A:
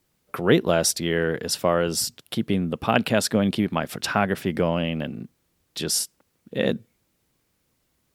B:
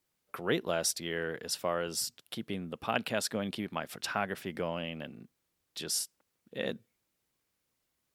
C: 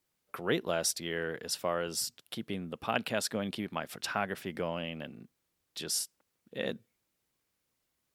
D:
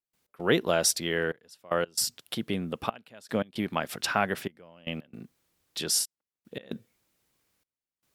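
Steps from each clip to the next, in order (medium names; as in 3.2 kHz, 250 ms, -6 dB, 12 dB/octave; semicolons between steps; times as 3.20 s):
bass shelf 400 Hz -8 dB; trim -8.5 dB
no audible change
trance gate ".x.xxxxxxx.." 114 bpm -24 dB; trim +6.5 dB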